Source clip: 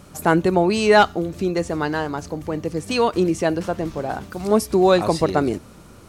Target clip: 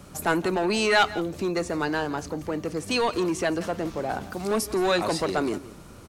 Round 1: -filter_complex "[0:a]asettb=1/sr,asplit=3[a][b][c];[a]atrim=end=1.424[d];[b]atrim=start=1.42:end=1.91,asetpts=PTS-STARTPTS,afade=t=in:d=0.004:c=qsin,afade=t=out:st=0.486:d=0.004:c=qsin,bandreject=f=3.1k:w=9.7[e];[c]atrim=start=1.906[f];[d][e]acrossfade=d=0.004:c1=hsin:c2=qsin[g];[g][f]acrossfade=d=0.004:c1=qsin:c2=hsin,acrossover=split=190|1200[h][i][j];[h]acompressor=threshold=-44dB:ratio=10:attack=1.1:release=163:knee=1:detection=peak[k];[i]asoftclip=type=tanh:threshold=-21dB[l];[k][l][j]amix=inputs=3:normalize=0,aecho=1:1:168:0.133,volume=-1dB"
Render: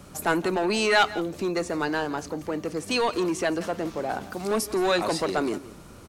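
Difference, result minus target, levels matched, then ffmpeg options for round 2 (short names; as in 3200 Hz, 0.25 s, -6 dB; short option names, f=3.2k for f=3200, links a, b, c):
compressor: peak gain reduction +6 dB
-filter_complex "[0:a]asettb=1/sr,asplit=3[a][b][c];[a]atrim=end=1.424[d];[b]atrim=start=1.42:end=1.91,asetpts=PTS-STARTPTS,afade=t=in:d=0.004:c=qsin,afade=t=out:st=0.486:d=0.004:c=qsin,bandreject=f=3.1k:w=9.7[e];[c]atrim=start=1.906[f];[d][e]acrossfade=d=0.004:c1=hsin:c2=qsin[g];[g][f]acrossfade=d=0.004:c1=qsin:c2=hsin,acrossover=split=190|1200[h][i][j];[h]acompressor=threshold=-37.5dB:ratio=10:attack=1.1:release=163:knee=1:detection=peak[k];[i]asoftclip=type=tanh:threshold=-21dB[l];[k][l][j]amix=inputs=3:normalize=0,aecho=1:1:168:0.133,volume=-1dB"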